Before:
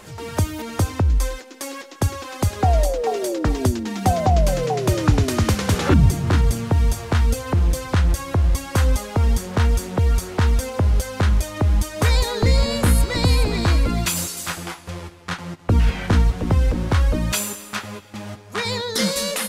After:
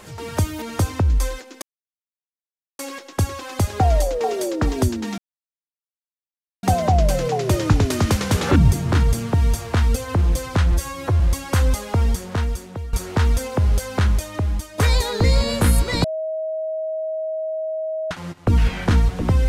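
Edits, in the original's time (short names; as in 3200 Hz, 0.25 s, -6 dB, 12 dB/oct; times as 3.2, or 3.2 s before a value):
1.62 insert silence 1.17 s
4.01 insert silence 1.45 s
8.1–8.42 stretch 1.5×
9.17–10.15 fade out, to -16.5 dB
11.27–12 fade out, to -9.5 dB
13.26–15.33 bleep 634 Hz -22.5 dBFS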